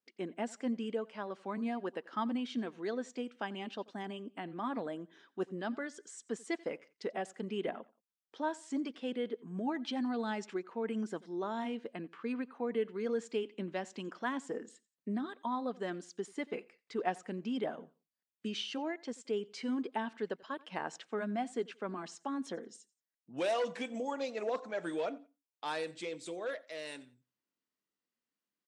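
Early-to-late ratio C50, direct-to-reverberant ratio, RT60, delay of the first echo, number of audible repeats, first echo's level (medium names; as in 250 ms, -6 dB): no reverb, no reverb, no reverb, 88 ms, 2, -22.5 dB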